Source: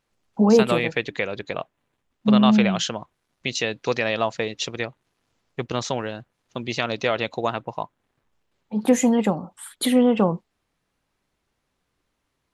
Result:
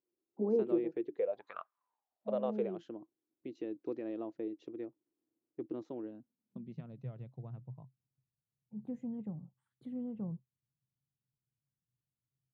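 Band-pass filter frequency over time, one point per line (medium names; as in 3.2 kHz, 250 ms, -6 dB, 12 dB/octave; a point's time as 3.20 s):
band-pass filter, Q 9
1.13 s 350 Hz
1.56 s 1.4 kHz
2.86 s 320 Hz
5.98 s 320 Hz
7.07 s 130 Hz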